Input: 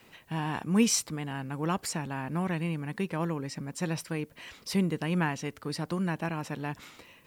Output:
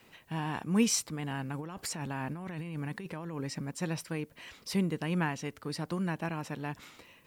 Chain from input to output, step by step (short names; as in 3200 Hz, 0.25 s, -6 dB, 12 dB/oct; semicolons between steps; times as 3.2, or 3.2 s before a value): 1.19–3.71 negative-ratio compressor -35 dBFS, ratio -1; gain -2.5 dB